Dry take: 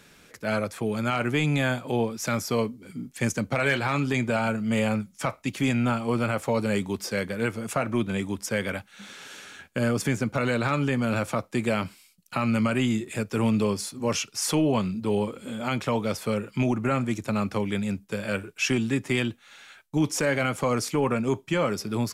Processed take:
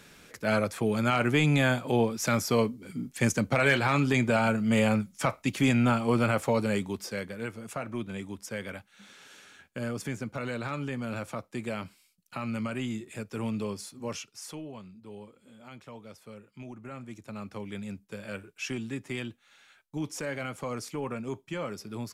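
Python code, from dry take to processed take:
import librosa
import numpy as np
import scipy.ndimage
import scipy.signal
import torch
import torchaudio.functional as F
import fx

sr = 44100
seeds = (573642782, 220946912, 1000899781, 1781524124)

y = fx.gain(x, sr, db=fx.line((6.37, 0.5), (7.44, -9.0), (14.06, -9.0), (14.73, -20.0), (16.57, -20.0), (17.82, -10.0)))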